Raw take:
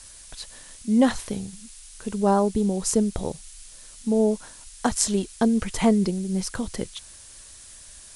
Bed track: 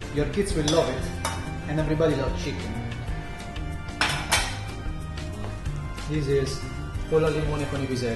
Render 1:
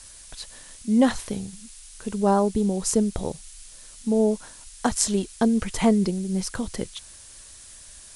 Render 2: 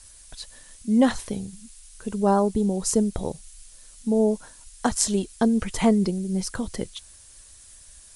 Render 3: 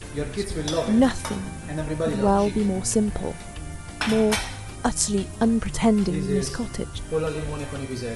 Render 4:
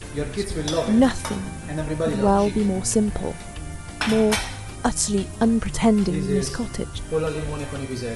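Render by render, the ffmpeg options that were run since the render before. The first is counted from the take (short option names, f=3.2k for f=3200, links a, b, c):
-af anull
-af "afftdn=nr=6:nf=-46"
-filter_complex "[1:a]volume=-3.5dB[a];[0:a][a]amix=inputs=2:normalize=0"
-af "volume=1.5dB,alimiter=limit=-3dB:level=0:latency=1"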